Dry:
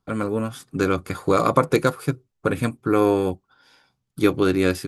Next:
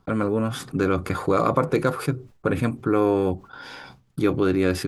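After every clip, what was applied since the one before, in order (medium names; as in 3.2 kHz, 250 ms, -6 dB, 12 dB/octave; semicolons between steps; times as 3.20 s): gate with hold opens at -48 dBFS; treble shelf 3.8 kHz -10.5 dB; level flattener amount 50%; trim -4 dB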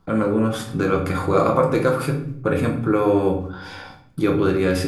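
simulated room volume 100 m³, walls mixed, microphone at 0.74 m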